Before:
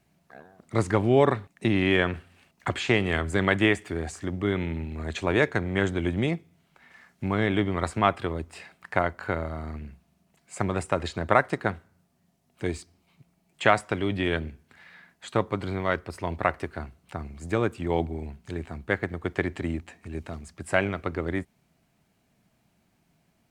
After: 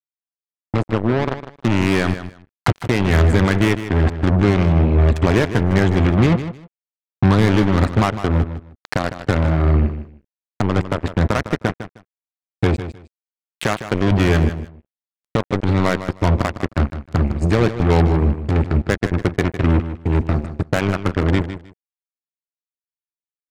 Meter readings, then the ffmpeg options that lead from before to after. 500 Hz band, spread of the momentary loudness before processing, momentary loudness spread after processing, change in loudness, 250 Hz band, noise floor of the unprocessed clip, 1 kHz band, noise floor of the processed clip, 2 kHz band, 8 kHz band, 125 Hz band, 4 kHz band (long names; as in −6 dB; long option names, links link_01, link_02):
+5.5 dB, 15 LU, 10 LU, +8.5 dB, +10.0 dB, −69 dBFS, +4.5 dB, below −85 dBFS, +3.5 dB, +6.5 dB, +14.0 dB, +5.5 dB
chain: -filter_complex "[0:a]aemphasis=mode=reproduction:type=bsi,bandreject=frequency=338.8:width_type=h:width=4,bandreject=frequency=677.6:width_type=h:width=4,bandreject=frequency=1016.4:width_type=h:width=4,bandreject=frequency=1355.2:width_type=h:width=4,bandreject=frequency=1694:width_type=h:width=4,bandreject=frequency=2032.8:width_type=h:width=4,asplit=2[link_01][link_02];[link_02]acompressor=threshold=-28dB:ratio=6,volume=1.5dB[link_03];[link_01][link_03]amix=inputs=2:normalize=0,alimiter=limit=-9.5dB:level=0:latency=1:release=365,dynaudnorm=framelen=220:gausssize=17:maxgain=5dB,acrusher=bits=2:mix=0:aa=0.5,asplit=2[link_04][link_05];[link_05]aecho=0:1:155|310:0.266|0.0506[link_06];[link_04][link_06]amix=inputs=2:normalize=0,adynamicequalizer=threshold=0.0126:dfrequency=4000:dqfactor=0.7:tfrequency=4000:tqfactor=0.7:attack=5:release=100:ratio=0.375:range=2:mode=cutabove:tftype=highshelf"